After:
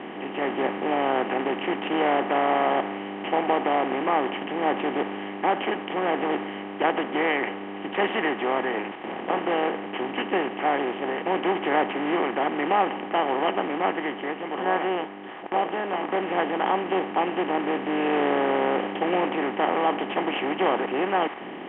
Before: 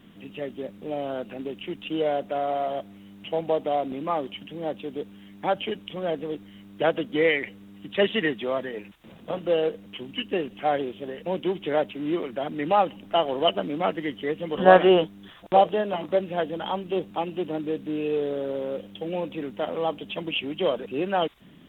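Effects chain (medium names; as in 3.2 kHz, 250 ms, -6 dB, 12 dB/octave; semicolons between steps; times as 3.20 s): spectral levelling over time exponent 0.4; dynamic bell 1.3 kHz, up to +5 dB, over -28 dBFS, Q 0.78; level rider; cabinet simulation 110–2700 Hz, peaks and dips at 160 Hz -8 dB, 290 Hz +5 dB, 560 Hz -7 dB, 930 Hz +4 dB, 1.4 kHz -4 dB; trim -8.5 dB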